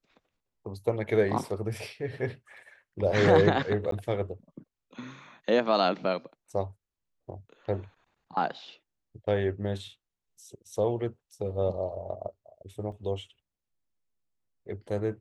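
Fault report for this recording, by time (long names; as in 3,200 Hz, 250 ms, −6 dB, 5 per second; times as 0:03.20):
0:03.91–0:03.92: drop-out 13 ms
0:12.92: drop-out 2.8 ms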